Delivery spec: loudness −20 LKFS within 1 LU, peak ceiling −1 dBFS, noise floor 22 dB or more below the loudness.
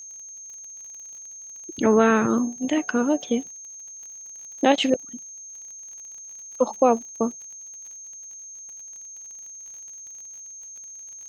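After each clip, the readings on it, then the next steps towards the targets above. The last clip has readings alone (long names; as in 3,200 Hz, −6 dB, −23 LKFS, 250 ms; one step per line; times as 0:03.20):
crackle rate 36 per second; interfering tone 6,400 Hz; level of the tone −38 dBFS; integrated loudness −22.5 LKFS; sample peak −5.0 dBFS; target loudness −20.0 LKFS
→ click removal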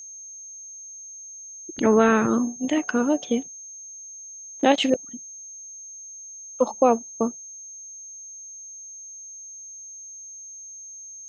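crackle rate 0 per second; interfering tone 6,400 Hz; level of the tone −38 dBFS
→ notch filter 6,400 Hz, Q 30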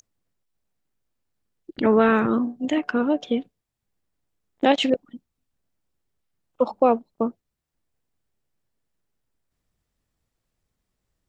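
interfering tone none found; integrated loudness −22.5 LKFS; sample peak −5.5 dBFS; target loudness −20.0 LKFS
→ level +2.5 dB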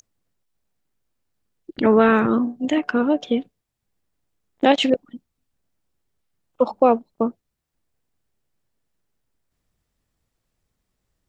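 integrated loudness −20.0 LKFS; sample peak −3.0 dBFS; background noise floor −79 dBFS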